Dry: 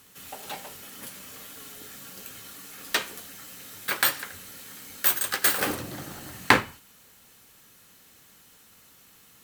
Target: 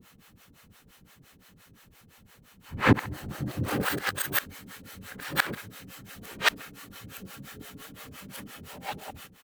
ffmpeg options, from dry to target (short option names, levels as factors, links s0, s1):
-filter_complex "[0:a]areverse,asplit=2[s0][s1];[s1]adelay=66,lowpass=f=3700:p=1,volume=0.119,asplit=2[s2][s3];[s3]adelay=66,lowpass=f=3700:p=1,volume=0.49,asplit=2[s4][s5];[s5]adelay=66,lowpass=f=3700:p=1,volume=0.49,asplit=2[s6][s7];[s7]adelay=66,lowpass=f=3700:p=1,volume=0.49[s8];[s0][s2][s4][s6][s8]amix=inputs=5:normalize=0,acrossover=split=470[s9][s10];[s9]aeval=exprs='val(0)*(1-1/2+1/2*cos(2*PI*5.8*n/s))':c=same[s11];[s10]aeval=exprs='val(0)*(1-1/2-1/2*cos(2*PI*5.8*n/s))':c=same[s12];[s11][s12]amix=inputs=2:normalize=0,bass=f=250:g=8,treble=f=4000:g=-8,volume=1.78"